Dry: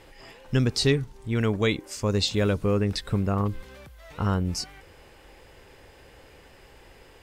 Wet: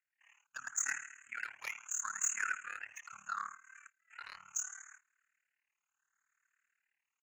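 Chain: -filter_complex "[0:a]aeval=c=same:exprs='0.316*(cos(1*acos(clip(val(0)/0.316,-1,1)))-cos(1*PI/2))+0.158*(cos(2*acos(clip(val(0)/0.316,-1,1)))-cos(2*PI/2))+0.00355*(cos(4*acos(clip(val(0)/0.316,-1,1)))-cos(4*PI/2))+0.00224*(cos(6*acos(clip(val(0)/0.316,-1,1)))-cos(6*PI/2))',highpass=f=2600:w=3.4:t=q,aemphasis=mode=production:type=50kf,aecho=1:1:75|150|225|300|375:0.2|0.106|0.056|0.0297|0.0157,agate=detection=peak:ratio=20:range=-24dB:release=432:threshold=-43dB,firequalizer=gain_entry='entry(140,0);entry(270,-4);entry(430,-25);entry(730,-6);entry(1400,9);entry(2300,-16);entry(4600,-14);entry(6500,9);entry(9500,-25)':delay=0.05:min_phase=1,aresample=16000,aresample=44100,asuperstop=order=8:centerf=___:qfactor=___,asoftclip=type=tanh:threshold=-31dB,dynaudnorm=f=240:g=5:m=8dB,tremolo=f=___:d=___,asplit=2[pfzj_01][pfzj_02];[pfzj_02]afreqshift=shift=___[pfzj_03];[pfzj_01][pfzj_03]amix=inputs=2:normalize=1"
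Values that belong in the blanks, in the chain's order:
4400, 0.91, 37, 0.889, 0.74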